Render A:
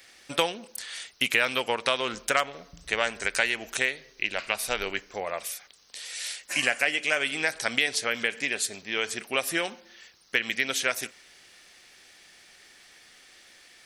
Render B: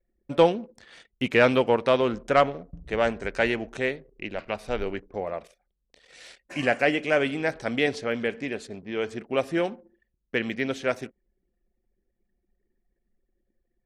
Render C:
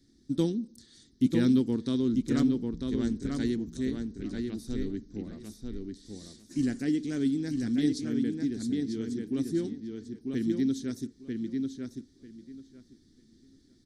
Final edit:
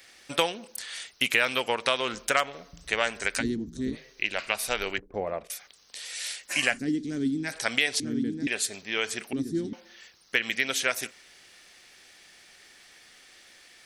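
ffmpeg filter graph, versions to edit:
-filter_complex "[2:a]asplit=4[s0][s1][s2][s3];[0:a]asplit=6[s4][s5][s6][s7][s8][s9];[s4]atrim=end=3.43[s10];[s0]atrim=start=3.37:end=3.98[s11];[s5]atrim=start=3.92:end=4.982[s12];[1:a]atrim=start=4.978:end=5.502[s13];[s6]atrim=start=5.498:end=6.8[s14];[s1]atrim=start=6.7:end=7.53[s15];[s7]atrim=start=7.43:end=8.002[s16];[s2]atrim=start=7.998:end=8.472[s17];[s8]atrim=start=8.468:end=9.332[s18];[s3]atrim=start=9.328:end=9.732[s19];[s9]atrim=start=9.728[s20];[s10][s11]acrossfade=d=0.06:c1=tri:c2=tri[s21];[s21][s12]acrossfade=d=0.06:c1=tri:c2=tri[s22];[s22][s13]acrossfade=d=0.004:c1=hsin:c2=hsin[s23];[s23][s14]acrossfade=d=0.004:c1=hsin:c2=hsin[s24];[s24][s15]acrossfade=d=0.1:c1=tri:c2=tri[s25];[s25][s16]acrossfade=d=0.1:c1=tri:c2=tri[s26];[s26][s17]acrossfade=d=0.004:c1=hsin:c2=hsin[s27];[s27][s18]acrossfade=d=0.004:c1=hsin:c2=hsin[s28];[s28][s19]acrossfade=d=0.004:c1=hsin:c2=hsin[s29];[s29][s20]acrossfade=d=0.004:c1=hsin:c2=hsin"

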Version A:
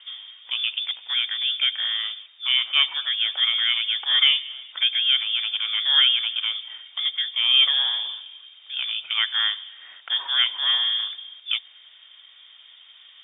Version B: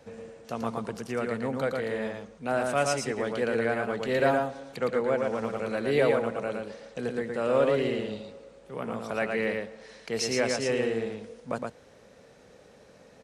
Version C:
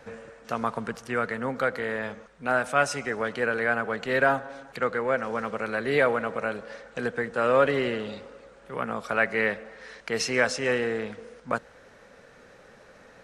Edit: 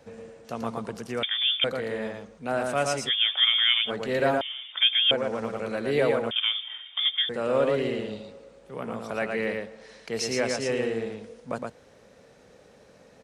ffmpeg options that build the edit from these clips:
-filter_complex "[0:a]asplit=4[s0][s1][s2][s3];[1:a]asplit=5[s4][s5][s6][s7][s8];[s4]atrim=end=1.232[s9];[s0]atrim=start=1.228:end=1.642[s10];[s5]atrim=start=1.638:end=3.11[s11];[s1]atrim=start=3.05:end=3.91[s12];[s6]atrim=start=3.85:end=4.412[s13];[s2]atrim=start=4.408:end=5.112[s14];[s7]atrim=start=5.108:end=6.312[s15];[s3]atrim=start=6.308:end=7.292[s16];[s8]atrim=start=7.288[s17];[s9][s10]acrossfade=d=0.004:c1=hsin:c2=hsin[s18];[s18][s11]acrossfade=d=0.004:c1=hsin:c2=hsin[s19];[s19][s12]acrossfade=d=0.06:c1=tri:c2=tri[s20];[s20][s13]acrossfade=d=0.06:c1=tri:c2=tri[s21];[s21][s14]acrossfade=d=0.004:c1=hsin:c2=hsin[s22];[s22][s15]acrossfade=d=0.004:c1=hsin:c2=hsin[s23];[s23][s16]acrossfade=d=0.004:c1=hsin:c2=hsin[s24];[s24][s17]acrossfade=d=0.004:c1=hsin:c2=hsin"

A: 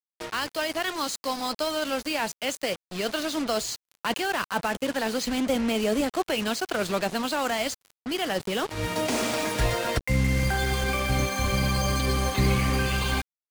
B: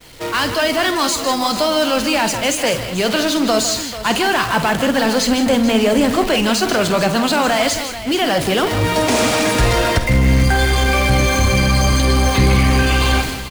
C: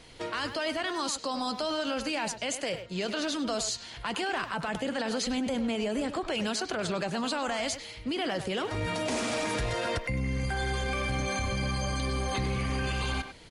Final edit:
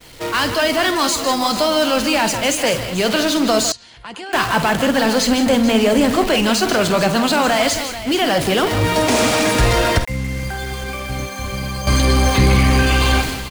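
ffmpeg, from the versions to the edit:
-filter_complex "[1:a]asplit=3[s0][s1][s2];[s0]atrim=end=3.722[s3];[2:a]atrim=start=3.718:end=4.332[s4];[s1]atrim=start=4.328:end=10.052[s5];[0:a]atrim=start=10.048:end=11.872[s6];[s2]atrim=start=11.868[s7];[s3][s4]acrossfade=d=0.004:c1=hsin:c2=hsin[s8];[s8][s5]acrossfade=d=0.004:c1=hsin:c2=hsin[s9];[s9][s6]acrossfade=d=0.004:c1=hsin:c2=hsin[s10];[s10][s7]acrossfade=d=0.004:c1=hsin:c2=hsin"

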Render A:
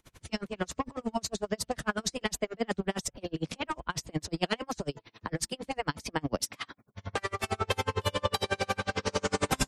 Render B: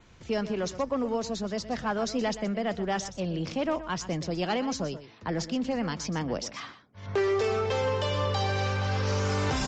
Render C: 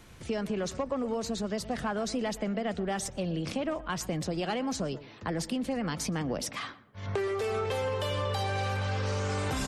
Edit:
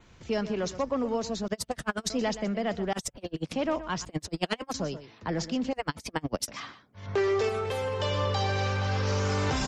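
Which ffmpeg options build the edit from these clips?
-filter_complex "[0:a]asplit=4[s0][s1][s2][s3];[1:a]asplit=6[s4][s5][s6][s7][s8][s9];[s4]atrim=end=1.482[s10];[s0]atrim=start=1.478:end=2.102[s11];[s5]atrim=start=2.098:end=2.932[s12];[s1]atrim=start=2.928:end=3.532[s13];[s6]atrim=start=3.528:end=4.052[s14];[s2]atrim=start=4.048:end=4.742[s15];[s7]atrim=start=4.738:end=5.732[s16];[s3]atrim=start=5.728:end=6.482[s17];[s8]atrim=start=6.478:end=7.492[s18];[2:a]atrim=start=7.488:end=8.002[s19];[s9]atrim=start=7.998[s20];[s10][s11]acrossfade=d=0.004:c1=hsin:c2=hsin[s21];[s21][s12]acrossfade=d=0.004:c1=hsin:c2=hsin[s22];[s22][s13]acrossfade=d=0.004:c1=hsin:c2=hsin[s23];[s23][s14]acrossfade=d=0.004:c1=hsin:c2=hsin[s24];[s24][s15]acrossfade=d=0.004:c1=hsin:c2=hsin[s25];[s25][s16]acrossfade=d=0.004:c1=hsin:c2=hsin[s26];[s26][s17]acrossfade=d=0.004:c1=hsin:c2=hsin[s27];[s27][s18]acrossfade=d=0.004:c1=hsin:c2=hsin[s28];[s28][s19]acrossfade=d=0.004:c1=hsin:c2=hsin[s29];[s29][s20]acrossfade=d=0.004:c1=hsin:c2=hsin"

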